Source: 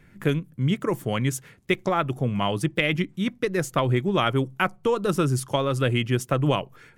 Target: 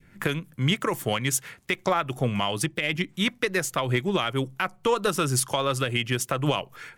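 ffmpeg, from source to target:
ffmpeg -i in.wav -filter_complex "[0:a]acrossover=split=650[link_01][link_02];[link_02]dynaudnorm=framelen=110:gausssize=3:maxgain=11.5dB[link_03];[link_01][link_03]amix=inputs=2:normalize=0,alimiter=limit=-11dB:level=0:latency=1:release=185,adynamicequalizer=threshold=0.0141:dfrequency=1100:dqfactor=0.88:tfrequency=1100:tqfactor=0.88:attack=5:release=100:ratio=0.375:range=2.5:mode=cutabove:tftype=bell,aeval=exprs='0.282*(cos(1*acos(clip(val(0)/0.282,-1,1)))-cos(1*PI/2))+0.0158*(cos(3*acos(clip(val(0)/0.282,-1,1)))-cos(3*PI/2))':channel_layout=same" out.wav

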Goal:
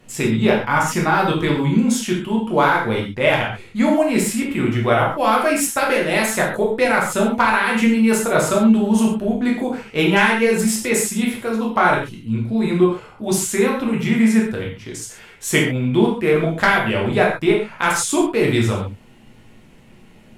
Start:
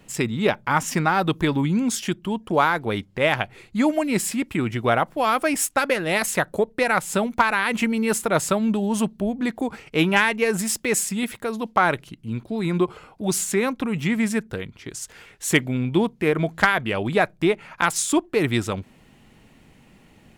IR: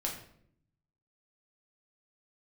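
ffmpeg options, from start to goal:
-filter_complex "[1:a]atrim=start_sample=2205,atrim=end_sample=4410,asetrate=29547,aresample=44100[link_01];[0:a][link_01]afir=irnorm=-1:irlink=0,volume=-1.5dB"

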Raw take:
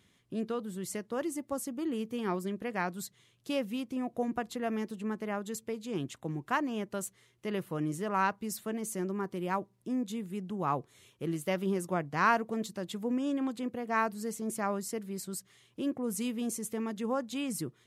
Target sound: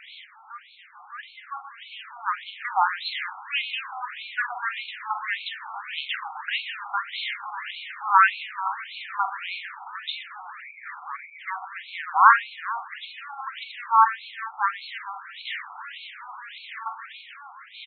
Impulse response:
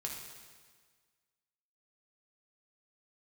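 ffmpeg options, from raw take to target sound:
-filter_complex "[0:a]aeval=exprs='val(0)+0.5*0.0168*sgn(val(0))':channel_layout=same,asplit=2[link_01][link_02];[link_02]aecho=0:1:45|127|437:0.398|0.266|0.158[link_03];[link_01][link_03]amix=inputs=2:normalize=0,dynaudnorm=framelen=490:gausssize=9:maxgain=15.5dB,asplit=3[link_04][link_05][link_06];[link_04]afade=type=out:start_time=10.6:duration=0.02[link_07];[link_05]asuperstop=centerf=3500:order=20:qfactor=1.3,afade=type=in:start_time=10.6:duration=0.02,afade=type=out:start_time=11.39:duration=0.02[link_08];[link_06]afade=type=in:start_time=11.39:duration=0.02[link_09];[link_07][link_08][link_09]amix=inputs=3:normalize=0,afftfilt=real='re*between(b*sr/1024,990*pow(3100/990,0.5+0.5*sin(2*PI*1.7*pts/sr))/1.41,990*pow(3100/990,0.5+0.5*sin(2*PI*1.7*pts/sr))*1.41)':imag='im*between(b*sr/1024,990*pow(3100/990,0.5+0.5*sin(2*PI*1.7*pts/sr))/1.41,990*pow(3100/990,0.5+0.5*sin(2*PI*1.7*pts/sr))*1.41)':win_size=1024:overlap=0.75,volume=2dB"

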